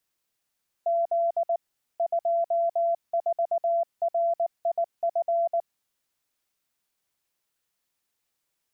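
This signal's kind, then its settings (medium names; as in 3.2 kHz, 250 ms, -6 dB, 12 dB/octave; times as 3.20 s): Morse "Z 24RIF" 19 wpm 678 Hz -21 dBFS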